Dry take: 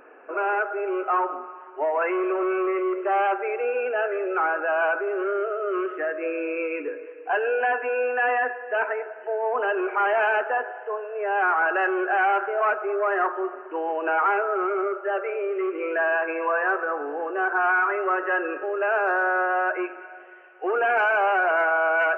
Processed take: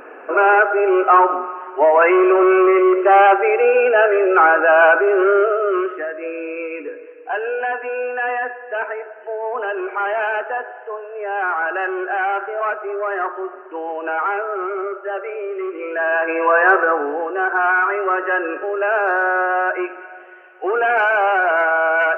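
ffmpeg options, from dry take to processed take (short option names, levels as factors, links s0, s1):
-af "volume=12.6,afade=t=out:st=5.39:d=0.68:silence=0.298538,afade=t=in:st=15.92:d=0.86:silence=0.298538,afade=t=out:st=16.78:d=0.51:silence=0.473151"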